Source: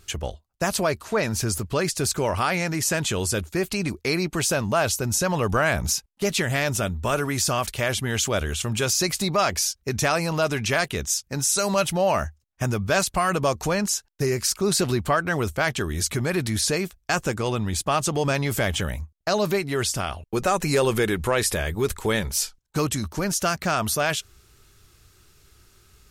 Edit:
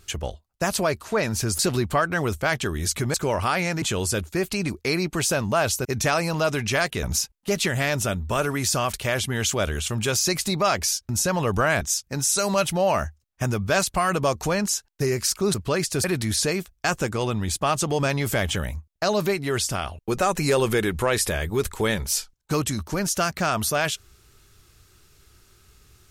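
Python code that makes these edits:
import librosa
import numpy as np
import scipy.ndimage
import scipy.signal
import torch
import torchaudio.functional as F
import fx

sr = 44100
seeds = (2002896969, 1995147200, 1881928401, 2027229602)

y = fx.edit(x, sr, fx.swap(start_s=1.59, length_s=0.5, other_s=14.74, other_length_s=1.55),
    fx.cut(start_s=2.77, length_s=0.25),
    fx.swap(start_s=5.05, length_s=0.72, other_s=9.83, other_length_s=1.18), tone=tone)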